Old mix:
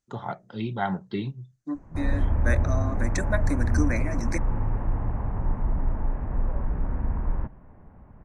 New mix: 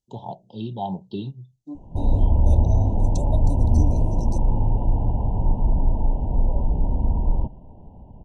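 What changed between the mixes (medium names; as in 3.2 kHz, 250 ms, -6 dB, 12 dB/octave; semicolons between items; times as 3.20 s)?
second voice -4.0 dB; background +6.0 dB; master: add Chebyshev band-stop 970–2800 Hz, order 5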